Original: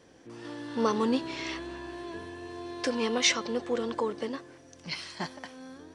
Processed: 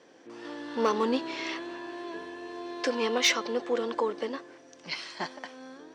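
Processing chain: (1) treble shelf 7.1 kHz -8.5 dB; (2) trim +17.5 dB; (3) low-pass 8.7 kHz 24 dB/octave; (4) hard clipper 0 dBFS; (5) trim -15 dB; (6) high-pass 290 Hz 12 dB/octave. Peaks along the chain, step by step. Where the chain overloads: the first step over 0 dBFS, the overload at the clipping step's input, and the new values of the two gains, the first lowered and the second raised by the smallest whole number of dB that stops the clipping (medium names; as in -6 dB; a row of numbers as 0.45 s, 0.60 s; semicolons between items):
-13.5 dBFS, +4.0 dBFS, +4.0 dBFS, 0.0 dBFS, -15.0 dBFS, -13.0 dBFS; step 2, 4.0 dB; step 2 +13.5 dB, step 5 -11 dB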